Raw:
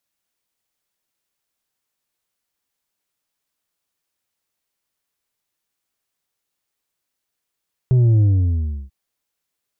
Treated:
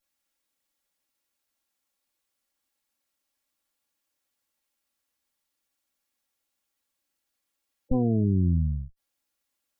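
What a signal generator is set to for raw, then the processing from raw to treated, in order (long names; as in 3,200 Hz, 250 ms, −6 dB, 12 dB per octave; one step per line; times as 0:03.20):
bass drop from 130 Hz, over 0.99 s, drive 5 dB, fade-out 0.69 s, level −11.5 dB
lower of the sound and its delayed copy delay 3.6 ms
gate on every frequency bin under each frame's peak −20 dB strong
brickwall limiter −14.5 dBFS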